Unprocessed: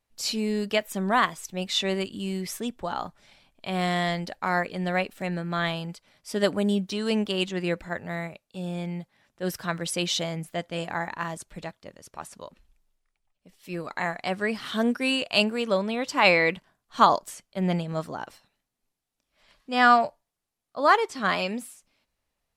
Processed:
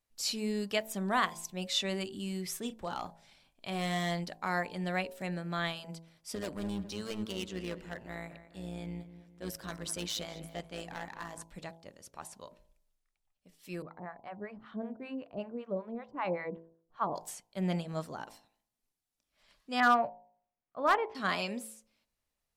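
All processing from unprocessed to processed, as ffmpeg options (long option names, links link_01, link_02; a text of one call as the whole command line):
ffmpeg -i in.wav -filter_complex "[0:a]asettb=1/sr,asplit=3[link_01][link_02][link_03];[link_01]atrim=end=2.594[link_04];[link_02]atrim=start=2.59:end=4.24,asetpts=PTS-STARTPTS,afade=type=in:duration=0.004:curve=qsin,afade=type=out:start_time=1.646:duration=0.004:curve=qsin,asoftclip=type=hard:threshold=-21dB,asplit=2[link_05][link_06];[link_06]adelay=35,volume=-12dB[link_07];[link_05][link_07]amix=inputs=2:normalize=0,atrim=end_sample=72765[link_08];[link_03]atrim=start=4.236[link_09];[link_04][link_08]acrossfade=duration=0.004:curve1=hsin:curve2=qsin[link_10];[link_10][link_09]acrossfade=duration=0.004:curve1=qsin:curve2=hsin,asettb=1/sr,asplit=3[link_11][link_12][link_13];[link_11]atrim=end=6.354[link_14];[link_12]atrim=start=6.35:end=11.43,asetpts=PTS-STARTPTS,afade=type=in:duration=0.004:curve=qsin,afade=type=out:start_time=5.076:duration=0.004:curve=qsin,asoftclip=type=hard:threshold=-24dB,tremolo=f=110:d=0.667,asplit=2[link_15][link_16];[link_16]adelay=207,lowpass=frequency=2900:poles=1,volume=-13dB,asplit=2[link_17][link_18];[link_18]adelay=207,lowpass=frequency=2900:poles=1,volume=0.44,asplit=2[link_19][link_20];[link_20]adelay=207,lowpass=frequency=2900:poles=1,volume=0.44,asplit=2[link_21][link_22];[link_22]adelay=207,lowpass=frequency=2900:poles=1,volume=0.44[link_23];[link_15][link_17][link_19][link_21][link_23]amix=inputs=5:normalize=0,atrim=end_sample=224028[link_24];[link_13]atrim=start=11.426[link_25];[link_14][link_24]acrossfade=duration=0.004:curve1=hsin:curve2=qsin[link_26];[link_26][link_25]acrossfade=duration=0.004:curve1=qsin:curve2=hsin,asettb=1/sr,asplit=3[link_27][link_28][link_29];[link_27]atrim=end=13.824[link_30];[link_28]atrim=start=13.82:end=17.16,asetpts=PTS-STARTPTS,afade=type=in:duration=0.004:curve=qsin,afade=type=out:start_time=3.336:duration=0.004:curve=qsin,lowpass=1100,acrossover=split=690[link_31][link_32];[link_31]aeval=exprs='val(0)*(1-1/2+1/2*cos(2*PI*5.2*n/s))':channel_layout=same[link_33];[link_32]aeval=exprs='val(0)*(1-1/2-1/2*cos(2*PI*5.2*n/s))':channel_layout=same[link_34];[link_33][link_34]amix=inputs=2:normalize=0[link_35];[link_29]atrim=start=17.156[link_36];[link_30][link_35]acrossfade=duration=0.004:curve1=hsin:curve2=qsin[link_37];[link_37][link_36]acrossfade=duration=0.004:curve1=qsin:curve2=hsin,asettb=1/sr,asplit=3[link_38][link_39][link_40];[link_38]atrim=end=19.804[link_41];[link_39]atrim=start=19.8:end=21.15,asetpts=PTS-STARTPTS,afade=type=in:duration=0.004:curve=qsin,afade=type=out:start_time=1.346:duration=0.004:curve=qsin,lowpass=frequency=2500:width=0.5412,lowpass=frequency=2500:width=1.3066,asoftclip=type=hard:threshold=-10.5dB[link_42];[link_40]atrim=start=21.146[link_43];[link_41][link_42]acrossfade=duration=0.004:curve1=hsin:curve2=qsin[link_44];[link_44][link_43]acrossfade=duration=0.004:curve1=qsin:curve2=hsin,bass=frequency=250:gain=1,treble=frequency=4000:gain=4,bandreject=frequency=55.02:width_type=h:width=4,bandreject=frequency=110.04:width_type=h:width=4,bandreject=frequency=165.06:width_type=h:width=4,bandreject=frequency=220.08:width_type=h:width=4,bandreject=frequency=275.1:width_type=h:width=4,bandreject=frequency=330.12:width_type=h:width=4,bandreject=frequency=385.14:width_type=h:width=4,bandreject=frequency=440.16:width_type=h:width=4,bandreject=frequency=495.18:width_type=h:width=4,bandreject=frequency=550.2:width_type=h:width=4,bandreject=frequency=605.22:width_type=h:width=4,bandreject=frequency=660.24:width_type=h:width=4,bandreject=frequency=715.26:width_type=h:width=4,bandreject=frequency=770.28:width_type=h:width=4,bandreject=frequency=825.3:width_type=h:width=4,bandreject=frequency=880.32:width_type=h:width=4,bandreject=frequency=935.34:width_type=h:width=4,bandreject=frequency=990.36:width_type=h:width=4,bandreject=frequency=1045.38:width_type=h:width=4,volume=-7dB" out.wav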